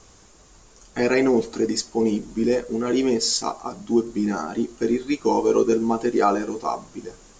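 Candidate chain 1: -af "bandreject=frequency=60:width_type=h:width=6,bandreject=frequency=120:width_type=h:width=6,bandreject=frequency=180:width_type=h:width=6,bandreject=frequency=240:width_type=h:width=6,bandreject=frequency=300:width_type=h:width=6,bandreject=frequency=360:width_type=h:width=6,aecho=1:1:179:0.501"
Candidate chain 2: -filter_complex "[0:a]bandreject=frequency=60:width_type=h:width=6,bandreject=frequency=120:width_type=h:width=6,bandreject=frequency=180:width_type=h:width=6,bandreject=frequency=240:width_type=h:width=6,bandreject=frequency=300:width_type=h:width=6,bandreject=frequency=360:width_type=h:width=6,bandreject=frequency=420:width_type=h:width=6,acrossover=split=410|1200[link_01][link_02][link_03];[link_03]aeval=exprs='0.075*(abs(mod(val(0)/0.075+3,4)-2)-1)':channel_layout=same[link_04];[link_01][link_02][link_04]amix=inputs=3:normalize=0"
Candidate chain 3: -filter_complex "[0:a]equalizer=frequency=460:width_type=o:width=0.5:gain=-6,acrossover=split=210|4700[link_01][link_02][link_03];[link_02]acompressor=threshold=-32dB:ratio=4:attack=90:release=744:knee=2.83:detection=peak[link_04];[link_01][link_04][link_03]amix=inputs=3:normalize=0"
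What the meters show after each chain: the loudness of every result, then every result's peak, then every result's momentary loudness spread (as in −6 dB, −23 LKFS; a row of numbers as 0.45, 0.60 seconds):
−22.0, −23.0, −29.0 LKFS; −6.5, −8.0, −13.0 dBFS; 8, 9, 9 LU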